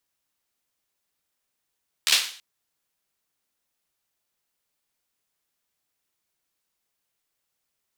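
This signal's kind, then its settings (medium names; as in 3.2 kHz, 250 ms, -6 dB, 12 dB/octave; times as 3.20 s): hand clap length 0.33 s, bursts 5, apart 13 ms, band 3.4 kHz, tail 0.46 s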